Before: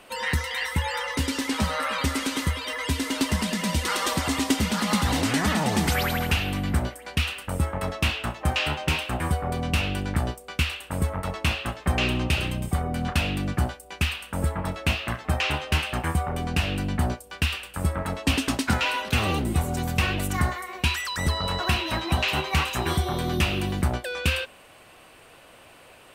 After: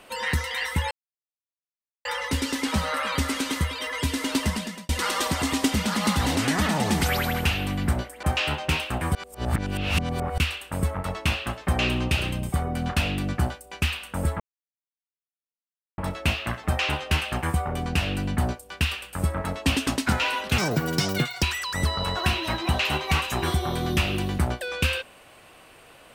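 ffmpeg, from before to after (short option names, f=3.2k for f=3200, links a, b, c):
-filter_complex "[0:a]asplit=9[a][b][c][d][e][f][g][h][i];[a]atrim=end=0.91,asetpts=PTS-STARTPTS,afade=t=out:st=0.906:d=0.004:c=hsin,apad=pad_dur=1.14[j];[b]atrim=start=0.91:end=3.75,asetpts=PTS-STARTPTS,afade=t=in:d=0.004:c=hsin,afade=t=out:st=2.41:d=0.43[k];[c]atrim=start=3.75:end=7.092,asetpts=PTS-STARTPTS,afade=t=in:d=0.004:c=hsin[l];[d]atrim=start=8.418:end=9.342[m];[e]atrim=start=9.338:end=10.572,asetpts=PTS-STARTPTS,areverse[n];[f]atrim=start=10.568:end=14.59,asetpts=PTS-STARTPTS,afade=t=out:st=4.018:d=0.004:c=hsin,apad=pad_dur=1.58[o];[g]atrim=start=14.59:end=19.194,asetpts=PTS-STARTPTS,afade=t=in:d=0.004:c=hsin[p];[h]atrim=start=19.19:end=20.86,asetpts=PTS-STARTPTS,asetrate=86877,aresample=44100,atrim=end_sample=37384,asetpts=PTS-STARTPTS[q];[i]atrim=start=20.856[r];[j][k][l]concat=n=3:v=0:a=1[s];[s][m]acrossfade=d=0.004:c1=hsin:c2=hsin[t];[t][n]acrossfade=d=0.004:c1=hsin:c2=hsin[u];[o][p]concat=n=2:v=0:a=1[v];[u][v]acrossfade=d=0.004:c1=hsin:c2=hsin[w];[w][q]acrossfade=d=0.004:c1=hsin:c2=hsin[x];[x][r]acrossfade=d=0.004:c1=hsin:c2=hsin"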